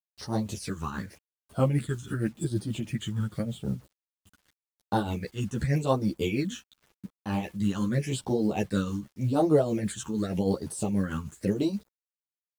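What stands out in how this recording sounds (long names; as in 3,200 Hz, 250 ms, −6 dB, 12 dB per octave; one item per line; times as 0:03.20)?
phaser sweep stages 8, 0.87 Hz, lowest notch 620–2,400 Hz
a quantiser's noise floor 10 bits, dither none
tremolo triangle 6.3 Hz, depth 65%
a shimmering, thickened sound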